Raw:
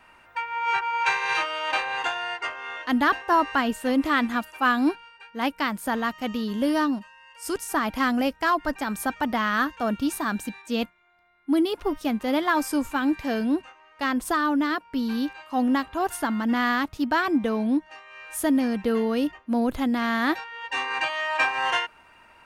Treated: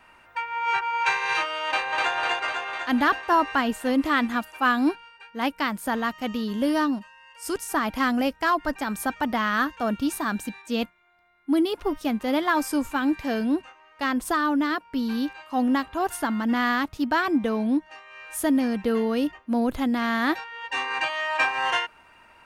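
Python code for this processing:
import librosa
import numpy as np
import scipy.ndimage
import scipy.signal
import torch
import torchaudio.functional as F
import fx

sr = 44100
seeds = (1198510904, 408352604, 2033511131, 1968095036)

y = fx.echo_throw(x, sr, start_s=1.67, length_s=0.47, ms=250, feedback_pct=65, wet_db=-1.5)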